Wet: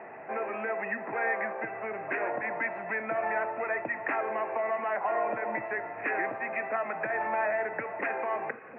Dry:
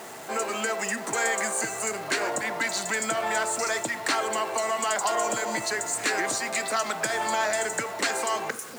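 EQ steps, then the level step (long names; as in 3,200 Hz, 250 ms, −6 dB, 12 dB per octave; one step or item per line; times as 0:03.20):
Chebyshev low-pass with heavy ripple 2,600 Hz, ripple 6 dB
−1.0 dB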